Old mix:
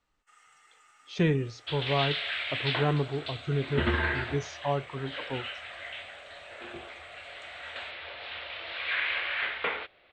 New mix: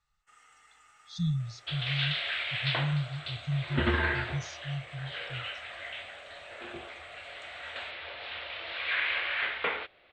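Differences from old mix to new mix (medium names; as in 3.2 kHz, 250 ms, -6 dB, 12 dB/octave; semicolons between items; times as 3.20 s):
speech: add brick-wall FIR band-stop 180–3300 Hz; first sound: remove high-pass 380 Hz 6 dB/octave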